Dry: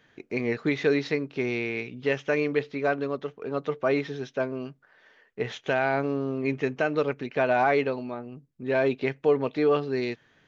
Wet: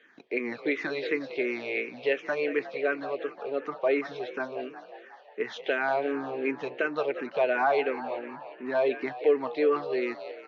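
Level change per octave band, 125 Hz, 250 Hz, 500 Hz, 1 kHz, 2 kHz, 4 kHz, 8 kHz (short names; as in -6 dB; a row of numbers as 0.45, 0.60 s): -18.0 dB, -5.0 dB, -1.5 dB, -1.5 dB, -1.0 dB, -2.5 dB, n/a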